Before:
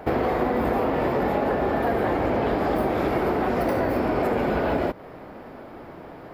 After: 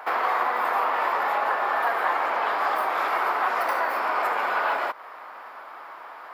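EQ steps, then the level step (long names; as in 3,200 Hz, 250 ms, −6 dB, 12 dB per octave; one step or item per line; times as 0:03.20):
high-pass with resonance 1,100 Hz, resonance Q 2.4
+2.0 dB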